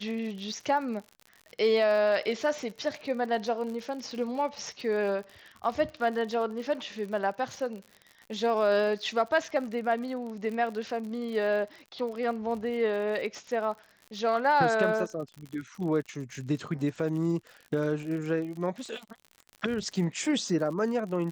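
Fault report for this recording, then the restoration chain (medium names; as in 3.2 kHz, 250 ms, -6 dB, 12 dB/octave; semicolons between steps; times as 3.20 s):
crackle 58 per s -37 dBFS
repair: de-click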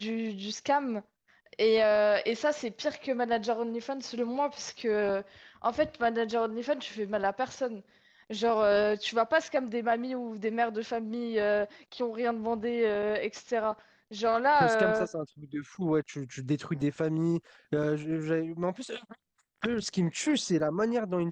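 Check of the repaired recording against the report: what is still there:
nothing left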